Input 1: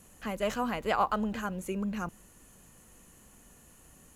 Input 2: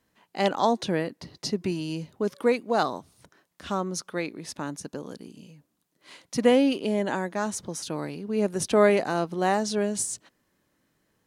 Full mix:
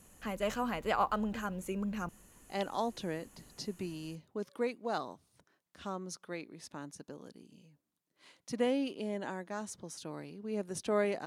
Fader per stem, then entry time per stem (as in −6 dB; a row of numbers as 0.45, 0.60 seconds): −3.0, −11.5 decibels; 0.00, 2.15 seconds